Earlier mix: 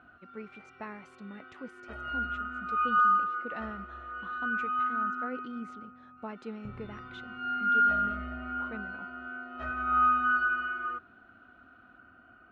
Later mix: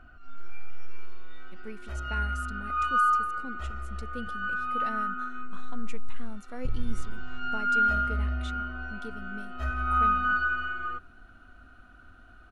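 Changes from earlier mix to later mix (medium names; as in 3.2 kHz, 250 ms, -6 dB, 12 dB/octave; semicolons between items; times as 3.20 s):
speech: entry +1.30 s; master: remove band-pass 150–2600 Hz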